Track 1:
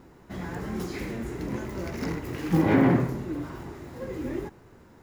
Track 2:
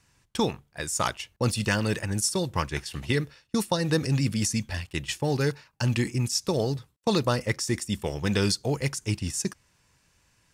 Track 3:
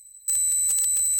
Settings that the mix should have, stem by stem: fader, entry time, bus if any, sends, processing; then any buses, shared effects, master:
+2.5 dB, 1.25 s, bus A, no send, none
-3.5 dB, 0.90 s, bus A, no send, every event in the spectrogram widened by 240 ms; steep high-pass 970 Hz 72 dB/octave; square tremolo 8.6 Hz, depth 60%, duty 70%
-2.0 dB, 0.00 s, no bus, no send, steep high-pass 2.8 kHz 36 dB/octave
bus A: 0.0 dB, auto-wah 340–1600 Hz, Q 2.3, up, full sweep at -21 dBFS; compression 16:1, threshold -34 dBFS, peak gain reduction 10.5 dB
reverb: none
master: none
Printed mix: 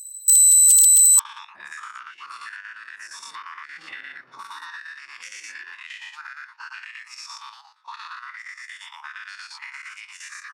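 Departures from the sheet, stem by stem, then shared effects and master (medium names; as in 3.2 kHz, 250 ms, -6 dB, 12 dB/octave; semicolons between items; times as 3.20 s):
stem 1 +2.5 dB -> -9.5 dB; stem 2 -3.5 dB -> +4.0 dB; stem 3 -2.0 dB -> +9.5 dB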